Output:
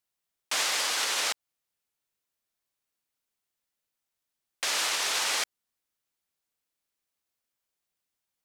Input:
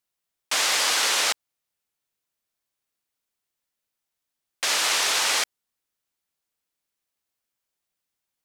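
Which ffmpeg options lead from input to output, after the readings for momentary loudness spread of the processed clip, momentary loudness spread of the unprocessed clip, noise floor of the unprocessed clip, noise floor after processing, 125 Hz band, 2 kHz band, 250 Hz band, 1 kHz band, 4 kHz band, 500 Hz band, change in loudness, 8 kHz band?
7 LU, 8 LU, -84 dBFS, under -85 dBFS, no reading, -5.5 dB, -5.5 dB, -5.5 dB, -5.5 dB, -5.5 dB, -5.5 dB, -5.5 dB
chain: -af "alimiter=limit=0.158:level=0:latency=1:release=171,volume=0.794"

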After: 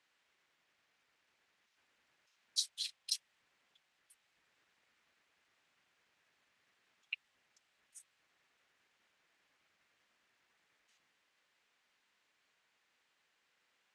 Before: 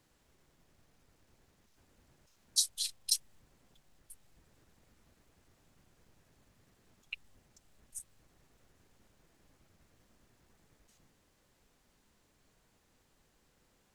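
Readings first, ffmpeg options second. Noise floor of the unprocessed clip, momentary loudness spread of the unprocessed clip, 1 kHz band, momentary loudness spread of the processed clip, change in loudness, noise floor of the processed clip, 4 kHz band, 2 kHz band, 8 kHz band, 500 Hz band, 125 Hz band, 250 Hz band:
-72 dBFS, 17 LU, -5.5 dB, 22 LU, -5.0 dB, -79 dBFS, -4.0 dB, +1.0 dB, -9.5 dB, under -10 dB, under -20 dB, under -15 dB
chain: -af "bandpass=f=2300:t=q:w=1.1:csg=0,volume=1.19"

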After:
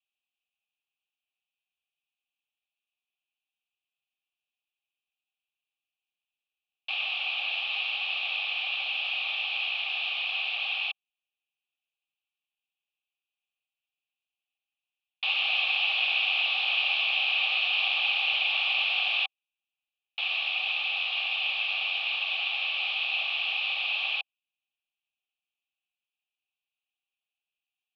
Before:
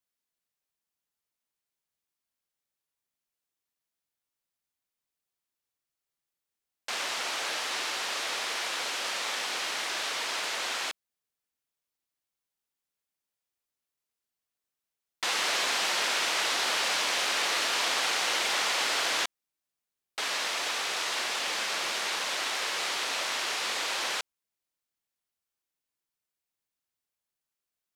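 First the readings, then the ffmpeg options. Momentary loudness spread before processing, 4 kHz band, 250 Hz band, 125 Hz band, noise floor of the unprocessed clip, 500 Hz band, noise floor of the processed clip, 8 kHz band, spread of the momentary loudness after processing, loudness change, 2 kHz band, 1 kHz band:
6 LU, +2.5 dB, under -25 dB, no reading, under -85 dBFS, -11.5 dB, under -85 dBFS, under -30 dB, 6 LU, +2.0 dB, +3.5 dB, -7.0 dB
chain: -filter_complex "[0:a]aexciter=amount=13.2:drive=6.8:freq=2200,asplit=3[s0][s1][s2];[s0]bandpass=f=730:t=q:w=8,volume=1[s3];[s1]bandpass=f=1090:t=q:w=8,volume=0.501[s4];[s2]bandpass=f=2440:t=q:w=8,volume=0.355[s5];[s3][s4][s5]amix=inputs=3:normalize=0,highpass=f=250:t=q:w=0.5412,highpass=f=250:t=q:w=1.307,lowpass=f=3400:t=q:w=0.5176,lowpass=f=3400:t=q:w=0.7071,lowpass=f=3400:t=q:w=1.932,afreqshift=55"

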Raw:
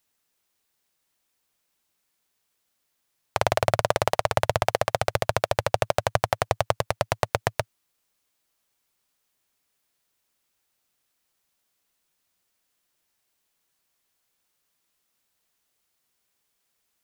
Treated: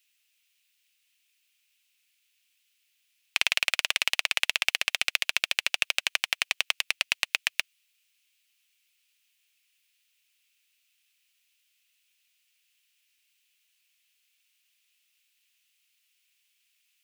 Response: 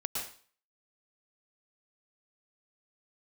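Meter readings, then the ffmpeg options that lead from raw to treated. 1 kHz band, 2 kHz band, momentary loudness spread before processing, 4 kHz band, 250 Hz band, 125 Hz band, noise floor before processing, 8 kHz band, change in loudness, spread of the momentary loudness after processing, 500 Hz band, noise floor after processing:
-15.5 dB, +5.0 dB, 4 LU, +8.0 dB, under -15 dB, under -25 dB, -76 dBFS, +2.5 dB, -0.5 dB, 3 LU, -23.5 dB, -73 dBFS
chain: -af "highpass=f=2600:t=q:w=3.5,aeval=exprs='0.668*(cos(1*acos(clip(val(0)/0.668,-1,1)))-cos(1*PI/2))+0.0119*(cos(6*acos(clip(val(0)/0.668,-1,1)))-cos(6*PI/2))':c=same,volume=1.19"

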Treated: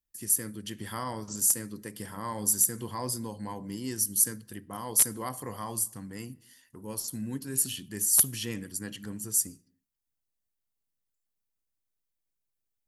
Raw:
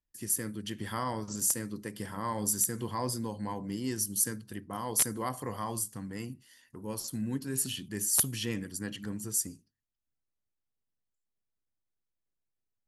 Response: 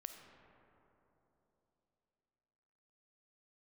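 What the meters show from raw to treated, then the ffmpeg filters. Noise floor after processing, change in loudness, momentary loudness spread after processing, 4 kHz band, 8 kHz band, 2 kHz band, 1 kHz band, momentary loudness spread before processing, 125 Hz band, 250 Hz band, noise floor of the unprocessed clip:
-83 dBFS, +4.0 dB, 17 LU, +0.5 dB, +4.5 dB, -1.0 dB, -1.5 dB, 12 LU, -1.5 dB, -1.5 dB, -85 dBFS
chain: -filter_complex "[0:a]highshelf=f=7600:g=9.5,asplit=2[s0][s1];[1:a]atrim=start_sample=2205,afade=t=out:st=0.33:d=0.01,atrim=end_sample=14994[s2];[s1][s2]afir=irnorm=-1:irlink=0,volume=0.224[s3];[s0][s3]amix=inputs=2:normalize=0,volume=0.75"

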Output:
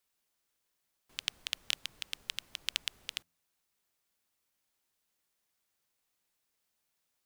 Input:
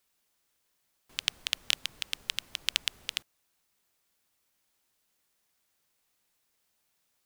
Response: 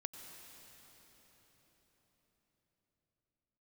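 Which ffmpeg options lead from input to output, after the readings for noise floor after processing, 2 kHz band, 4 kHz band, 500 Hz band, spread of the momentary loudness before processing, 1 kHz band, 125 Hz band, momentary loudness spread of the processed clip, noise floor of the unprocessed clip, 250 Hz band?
-82 dBFS, -5.5 dB, -5.5 dB, -5.5 dB, 7 LU, -5.5 dB, no reading, 7 LU, -76 dBFS, -5.5 dB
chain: -af "bandreject=f=83.45:t=h:w=4,bandreject=f=166.9:t=h:w=4,bandreject=f=250.35:t=h:w=4,volume=0.531"

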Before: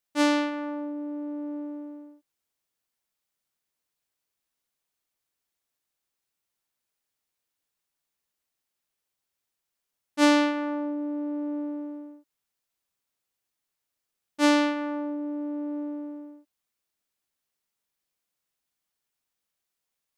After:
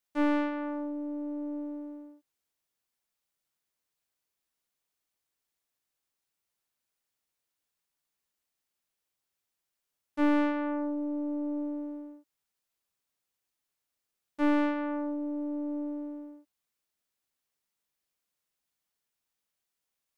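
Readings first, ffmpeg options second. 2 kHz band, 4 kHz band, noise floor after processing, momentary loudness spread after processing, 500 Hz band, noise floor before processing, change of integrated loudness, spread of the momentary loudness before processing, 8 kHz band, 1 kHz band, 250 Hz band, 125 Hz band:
-7.5 dB, -16.5 dB, under -85 dBFS, 16 LU, -4.5 dB, -84 dBFS, -4.0 dB, 18 LU, under -20 dB, -5.5 dB, -3.0 dB, no reading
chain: -filter_complex "[0:a]aeval=exprs='(tanh(11.2*val(0)+0.45)-tanh(0.45))/11.2':c=same,acrossover=split=2500[s0][s1];[s1]acompressor=threshold=0.00126:ratio=4:attack=1:release=60[s2];[s0][s2]amix=inputs=2:normalize=0"

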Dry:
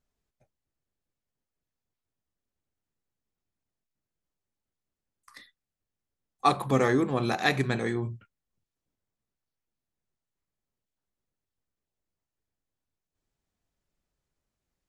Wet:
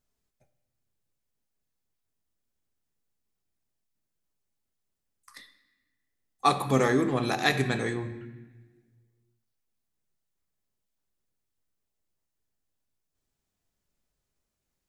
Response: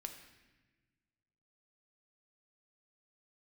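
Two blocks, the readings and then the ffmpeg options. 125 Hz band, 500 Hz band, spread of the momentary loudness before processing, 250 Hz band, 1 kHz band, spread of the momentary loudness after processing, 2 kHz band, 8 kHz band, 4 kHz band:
-0.5 dB, 0.0 dB, 7 LU, 0.0 dB, 0.0 dB, 12 LU, +1.0 dB, +4.0 dB, +2.5 dB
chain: -filter_complex "[0:a]highshelf=f=4800:g=6,asplit=2[s0][s1];[1:a]atrim=start_sample=2205[s2];[s1][s2]afir=irnorm=-1:irlink=0,volume=2.37[s3];[s0][s3]amix=inputs=2:normalize=0,volume=0.398"

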